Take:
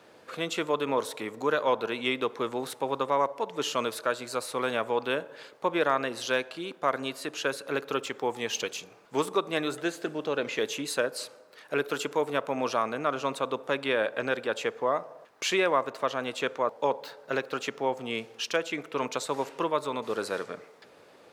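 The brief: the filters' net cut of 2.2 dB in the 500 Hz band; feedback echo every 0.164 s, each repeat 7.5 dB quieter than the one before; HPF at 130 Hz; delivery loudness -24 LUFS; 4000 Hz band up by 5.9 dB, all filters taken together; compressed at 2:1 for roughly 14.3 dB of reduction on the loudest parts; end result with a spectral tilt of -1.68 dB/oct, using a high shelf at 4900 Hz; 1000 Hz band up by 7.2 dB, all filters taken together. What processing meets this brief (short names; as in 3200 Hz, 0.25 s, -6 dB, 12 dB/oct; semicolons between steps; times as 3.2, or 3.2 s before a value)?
HPF 130 Hz; bell 500 Hz -5 dB; bell 1000 Hz +9 dB; bell 4000 Hz +5.5 dB; high shelf 4900 Hz +3.5 dB; compressor 2:1, threshold -43 dBFS; feedback echo 0.164 s, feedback 42%, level -7.5 dB; gain +13.5 dB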